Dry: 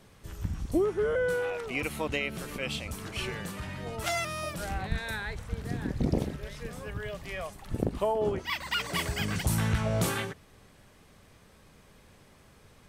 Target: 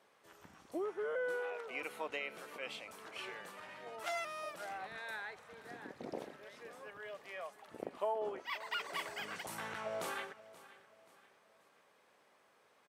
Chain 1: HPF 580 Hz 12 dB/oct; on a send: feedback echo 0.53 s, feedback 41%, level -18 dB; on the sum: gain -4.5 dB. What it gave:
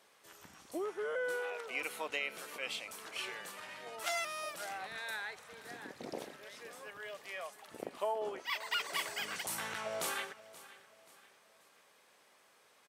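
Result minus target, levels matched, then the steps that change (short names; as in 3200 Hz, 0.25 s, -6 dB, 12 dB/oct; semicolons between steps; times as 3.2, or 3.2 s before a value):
4000 Hz band +3.5 dB
add after HPF: high shelf 2700 Hz -11 dB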